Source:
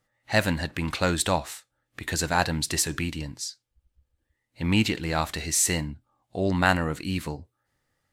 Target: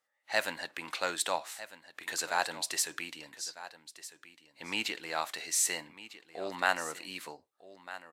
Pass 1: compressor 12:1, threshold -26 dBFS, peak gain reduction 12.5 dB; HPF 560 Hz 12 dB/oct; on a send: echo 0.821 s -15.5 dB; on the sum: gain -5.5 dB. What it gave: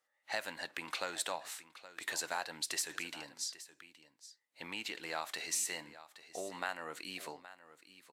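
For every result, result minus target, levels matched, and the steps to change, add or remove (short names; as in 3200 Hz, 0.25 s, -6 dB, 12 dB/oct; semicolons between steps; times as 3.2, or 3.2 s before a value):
compressor: peak gain reduction +12.5 dB; echo 0.43 s early
remove: compressor 12:1, threshold -26 dBFS, peak gain reduction 12.5 dB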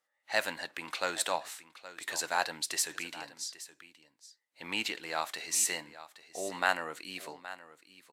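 echo 0.43 s early
change: echo 1.251 s -15.5 dB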